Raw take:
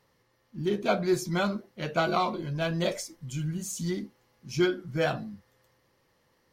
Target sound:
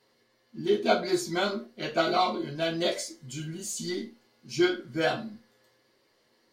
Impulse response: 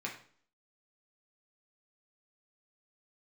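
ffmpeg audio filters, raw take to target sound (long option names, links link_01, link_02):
-filter_complex "[0:a]equalizer=frequency=7000:width=0.43:gain=4.5[link_01];[1:a]atrim=start_sample=2205,asetrate=83790,aresample=44100[link_02];[link_01][link_02]afir=irnorm=-1:irlink=0,volume=5dB"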